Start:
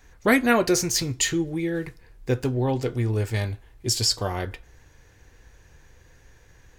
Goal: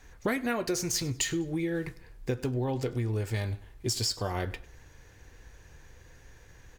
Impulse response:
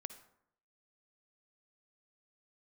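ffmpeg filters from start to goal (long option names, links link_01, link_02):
-af "acompressor=threshold=-27dB:ratio=6,aecho=1:1:100|200:0.0841|0.0286" -ar 44100 -c:a adpcm_ima_wav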